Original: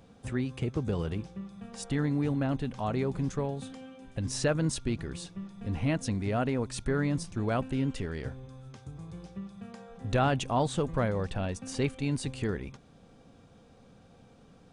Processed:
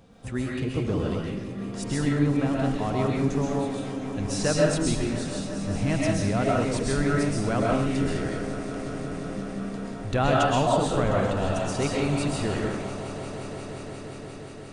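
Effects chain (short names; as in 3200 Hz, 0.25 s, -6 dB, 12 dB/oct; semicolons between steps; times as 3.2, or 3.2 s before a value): swelling echo 0.177 s, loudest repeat 5, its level -17.5 dB; reverb RT60 0.60 s, pre-delay 90 ms, DRR -3 dB; gain +1.5 dB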